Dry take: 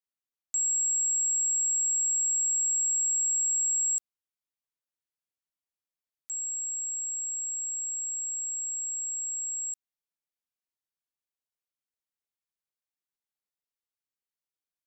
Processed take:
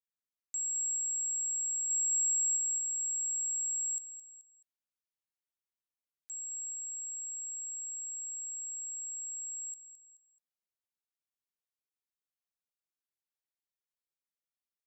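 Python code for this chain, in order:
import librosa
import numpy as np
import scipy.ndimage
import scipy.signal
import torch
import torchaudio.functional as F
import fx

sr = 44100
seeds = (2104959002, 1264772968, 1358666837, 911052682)

y = fx.high_shelf(x, sr, hz=7000.0, db=7.5, at=(1.9, 2.57))
y = fx.echo_feedback(y, sr, ms=215, feedback_pct=29, wet_db=-9)
y = F.gain(torch.from_numpy(y), -7.5).numpy()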